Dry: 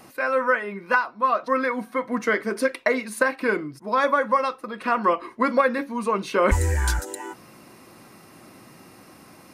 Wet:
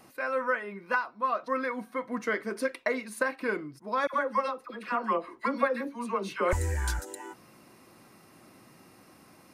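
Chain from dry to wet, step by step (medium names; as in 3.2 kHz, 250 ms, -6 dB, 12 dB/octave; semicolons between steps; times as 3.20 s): 4.07–6.53 s: phase dispersion lows, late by 69 ms, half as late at 940 Hz; trim -7.5 dB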